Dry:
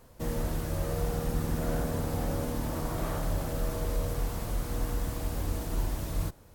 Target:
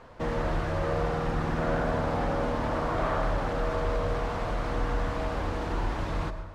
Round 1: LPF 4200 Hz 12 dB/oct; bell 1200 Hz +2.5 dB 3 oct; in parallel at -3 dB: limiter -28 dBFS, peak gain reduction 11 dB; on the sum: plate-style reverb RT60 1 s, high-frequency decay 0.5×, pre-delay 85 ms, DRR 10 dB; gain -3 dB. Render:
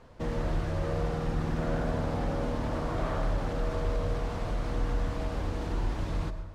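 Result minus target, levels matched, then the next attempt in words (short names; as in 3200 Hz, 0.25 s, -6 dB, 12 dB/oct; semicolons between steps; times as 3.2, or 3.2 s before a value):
1000 Hz band -4.0 dB
LPF 4200 Hz 12 dB/oct; bell 1200 Hz +10.5 dB 3 oct; in parallel at -3 dB: limiter -28 dBFS, peak gain reduction 12 dB; on the sum: plate-style reverb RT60 1 s, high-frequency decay 0.5×, pre-delay 85 ms, DRR 10 dB; gain -3 dB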